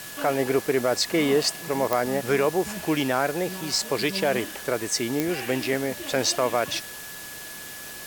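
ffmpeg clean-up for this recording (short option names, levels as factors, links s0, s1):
-af "adeclick=t=4,bandreject=f=1700:w=30,afwtdn=0.011"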